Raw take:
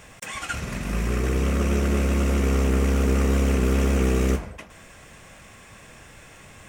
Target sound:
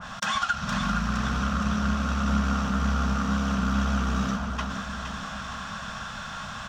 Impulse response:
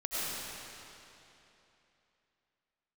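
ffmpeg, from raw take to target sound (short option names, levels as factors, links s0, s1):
-filter_complex "[0:a]firequalizer=gain_entry='entry(110,0);entry(210,10);entry(350,-16);entry(650,5);entry(1400,15);entry(2100,-6);entry(3400,8);entry(5800,3);entry(8900,-14)':delay=0.05:min_phase=1,acompressor=threshold=0.0398:ratio=6,asplit=2[s0][s1];[s1]aecho=0:1:465|930|1395|1860|2325|2790|3255:0.422|0.228|0.123|0.0664|0.0359|0.0194|0.0105[s2];[s0][s2]amix=inputs=2:normalize=0,adynamicequalizer=threshold=0.00631:dfrequency=2200:dqfactor=0.7:tfrequency=2200:tqfactor=0.7:attack=5:release=100:ratio=0.375:range=1.5:mode=boostabove:tftype=highshelf,volume=1.5"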